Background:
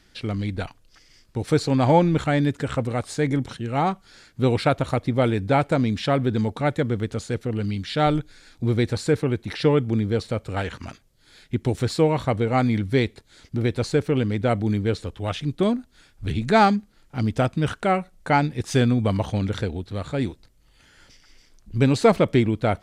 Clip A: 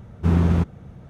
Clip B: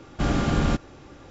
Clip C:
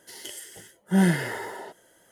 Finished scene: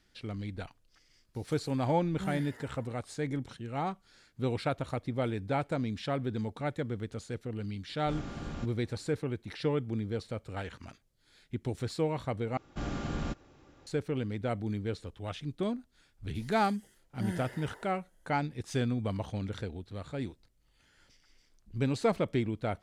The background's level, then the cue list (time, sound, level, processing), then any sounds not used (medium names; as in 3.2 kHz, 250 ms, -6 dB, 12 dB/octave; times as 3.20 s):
background -11.5 dB
1.27 s: add C -17.5 dB + expander on every frequency bin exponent 1.5
7.89 s: add B -17.5 dB
12.57 s: replace with B -12.5 dB
16.27 s: add C -17 dB
not used: A